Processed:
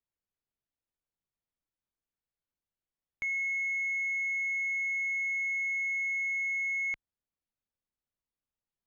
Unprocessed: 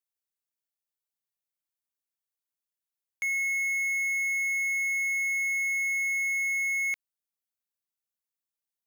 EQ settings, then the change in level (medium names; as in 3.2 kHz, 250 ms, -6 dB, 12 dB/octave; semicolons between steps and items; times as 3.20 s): low-pass 4.8 kHz 12 dB/octave; tilt EQ -3 dB/octave; 0.0 dB